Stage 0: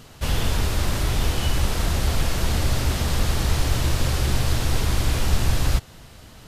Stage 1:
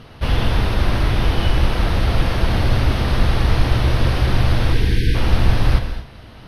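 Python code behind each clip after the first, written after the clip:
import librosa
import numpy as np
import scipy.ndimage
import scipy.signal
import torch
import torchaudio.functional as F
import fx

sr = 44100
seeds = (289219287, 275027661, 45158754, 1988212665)

y = fx.spec_erase(x, sr, start_s=4.73, length_s=0.42, low_hz=510.0, high_hz=1500.0)
y = np.convolve(y, np.full(6, 1.0 / 6))[:len(y)]
y = fx.rev_gated(y, sr, seeds[0], gate_ms=270, shape='flat', drr_db=6.5)
y = F.gain(torch.from_numpy(y), 5.0).numpy()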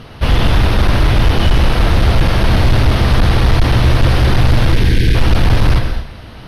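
y = x + 10.0 ** (-13.0 / 20.0) * np.pad(x, (int(124 * sr / 1000.0), 0))[:len(x)]
y = np.clip(10.0 ** (11.5 / 20.0) * y, -1.0, 1.0) / 10.0 ** (11.5 / 20.0)
y = F.gain(torch.from_numpy(y), 6.5).numpy()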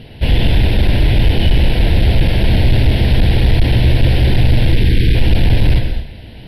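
y = fx.fixed_phaser(x, sr, hz=2900.0, stages=4)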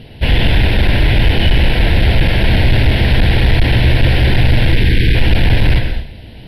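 y = fx.dynamic_eq(x, sr, hz=1600.0, q=0.73, threshold_db=-40.0, ratio=4.0, max_db=8)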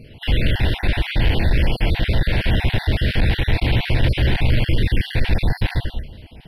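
y = fx.spec_dropout(x, sr, seeds[1], share_pct=33)
y = F.gain(torch.from_numpy(y), -5.5).numpy()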